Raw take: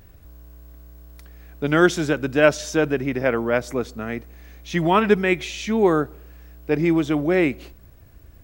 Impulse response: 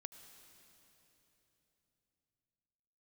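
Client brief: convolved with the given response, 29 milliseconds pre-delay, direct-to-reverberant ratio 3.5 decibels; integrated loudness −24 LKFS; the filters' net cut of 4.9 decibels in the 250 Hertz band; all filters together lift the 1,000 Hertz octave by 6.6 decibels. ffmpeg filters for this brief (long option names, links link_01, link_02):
-filter_complex "[0:a]equalizer=frequency=250:width_type=o:gain=-8.5,equalizer=frequency=1000:width_type=o:gain=9,asplit=2[link_01][link_02];[1:a]atrim=start_sample=2205,adelay=29[link_03];[link_02][link_03]afir=irnorm=-1:irlink=0,volume=2dB[link_04];[link_01][link_04]amix=inputs=2:normalize=0,volume=-5dB"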